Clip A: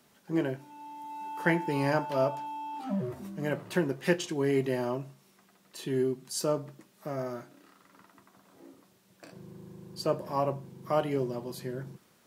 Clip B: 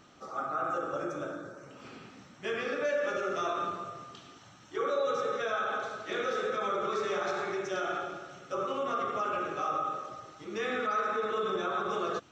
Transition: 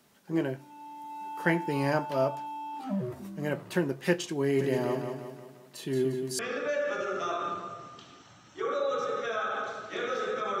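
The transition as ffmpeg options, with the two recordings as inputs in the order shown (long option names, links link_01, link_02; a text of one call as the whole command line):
ffmpeg -i cue0.wav -i cue1.wav -filter_complex "[0:a]asplit=3[link_01][link_02][link_03];[link_01]afade=type=out:start_time=4.58:duration=0.02[link_04];[link_02]aecho=1:1:176|352|528|704|880|1056:0.501|0.246|0.12|0.059|0.0289|0.0142,afade=type=in:start_time=4.58:duration=0.02,afade=type=out:start_time=6.39:duration=0.02[link_05];[link_03]afade=type=in:start_time=6.39:duration=0.02[link_06];[link_04][link_05][link_06]amix=inputs=3:normalize=0,apad=whole_dur=10.6,atrim=end=10.6,atrim=end=6.392[link_07];[1:a]atrim=start=2.548:end=6.76[link_08];[link_07][link_08]acrossfade=duration=0.004:curve1=hsin:curve2=hsin" out.wav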